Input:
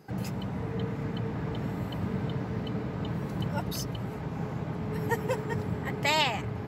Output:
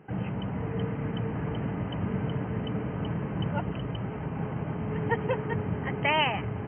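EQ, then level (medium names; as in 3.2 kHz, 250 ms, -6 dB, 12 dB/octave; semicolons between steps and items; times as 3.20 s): brick-wall FIR low-pass 3.2 kHz; +1.5 dB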